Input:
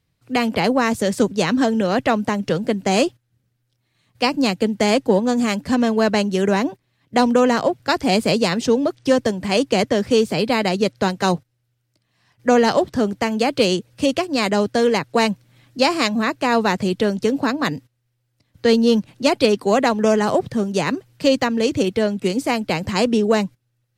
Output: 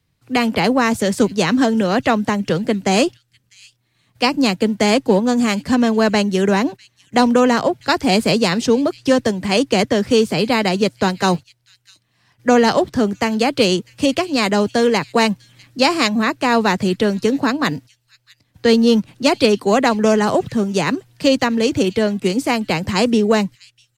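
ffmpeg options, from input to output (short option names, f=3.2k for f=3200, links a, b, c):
-filter_complex "[0:a]equalizer=f=570:t=o:w=0.77:g=-2.5,acrossover=split=100|900|2000[a][b][c][d];[a]acrusher=samples=39:mix=1:aa=0.000001:lfo=1:lforange=39:lforate=0.29[e];[d]aecho=1:1:650:0.0891[f];[e][b][c][f]amix=inputs=4:normalize=0,volume=3dB"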